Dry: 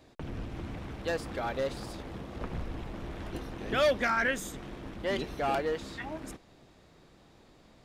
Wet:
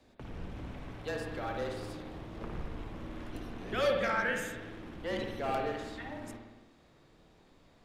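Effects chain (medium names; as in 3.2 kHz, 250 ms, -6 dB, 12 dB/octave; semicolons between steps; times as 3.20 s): frequency shift -25 Hz; spring tank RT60 1.1 s, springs 55 ms, chirp 25 ms, DRR 1.5 dB; trim -5.5 dB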